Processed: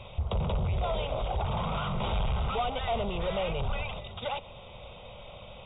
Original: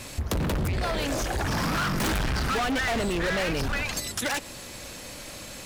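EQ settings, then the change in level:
linear-phase brick-wall low-pass 3,800 Hz
phaser with its sweep stopped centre 710 Hz, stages 4
0.0 dB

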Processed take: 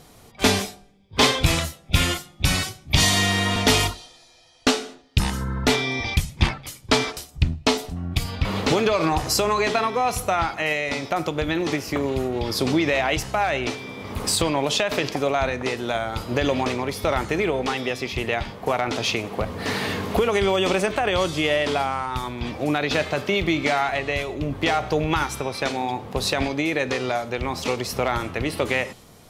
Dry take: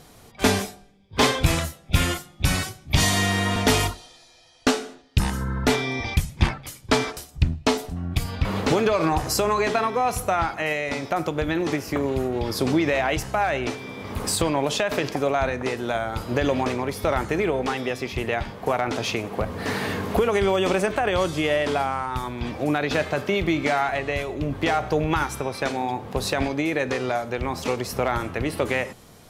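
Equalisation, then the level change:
parametric band 1,600 Hz −3 dB 0.22 octaves
dynamic equaliser 3,800 Hz, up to +5 dB, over −42 dBFS, Q 0.72
0.0 dB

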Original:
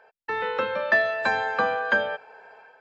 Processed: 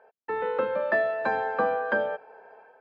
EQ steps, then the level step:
resonant band-pass 380 Hz, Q 0.61
+2.0 dB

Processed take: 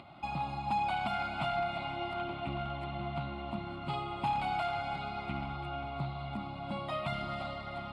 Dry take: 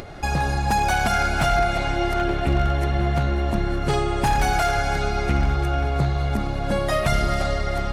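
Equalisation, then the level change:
high-pass filter 170 Hz 12 dB per octave
high-frequency loss of the air 110 metres
phaser with its sweep stopped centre 1,700 Hz, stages 6
−8.0 dB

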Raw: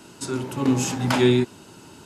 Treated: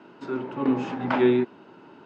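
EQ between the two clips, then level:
band-pass filter 240–2,100 Hz
high-frequency loss of the air 110 metres
0.0 dB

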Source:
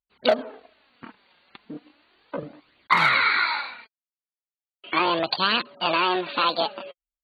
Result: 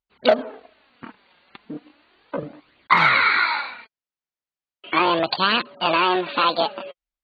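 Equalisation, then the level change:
high-frequency loss of the air 110 metres
+4.0 dB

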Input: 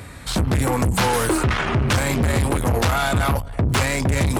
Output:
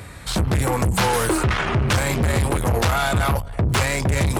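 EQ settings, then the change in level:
parametric band 260 Hz −7.5 dB 0.21 octaves
0.0 dB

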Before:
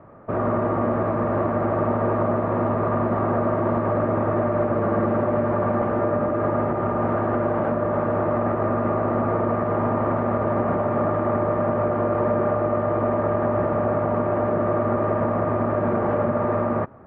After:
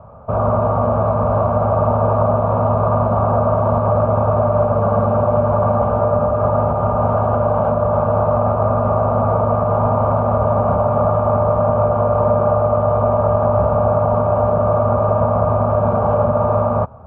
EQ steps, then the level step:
high-frequency loss of the air 110 metres
parametric band 69 Hz +10.5 dB 0.56 octaves
phaser with its sweep stopped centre 790 Hz, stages 4
+9.0 dB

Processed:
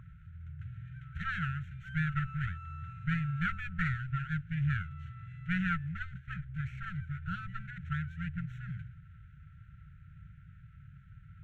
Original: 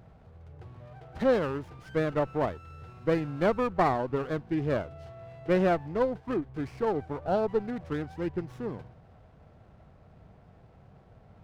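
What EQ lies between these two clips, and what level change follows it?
moving average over 9 samples
linear-phase brick-wall band-stop 180–1,300 Hz
parametric band 1,100 Hz +10 dB 0.23 octaves
+4.0 dB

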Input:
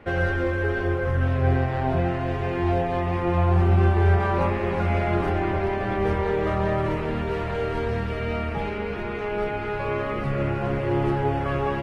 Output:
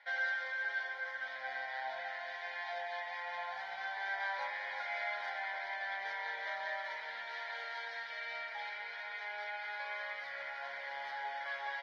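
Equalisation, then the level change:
band-pass filter 780–3,400 Hz
first difference
phaser with its sweep stopped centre 1,800 Hz, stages 8
+9.5 dB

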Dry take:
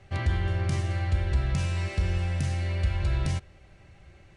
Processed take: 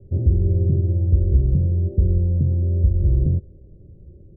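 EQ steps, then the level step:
Butterworth low-pass 500 Hz 48 dB per octave
+9.0 dB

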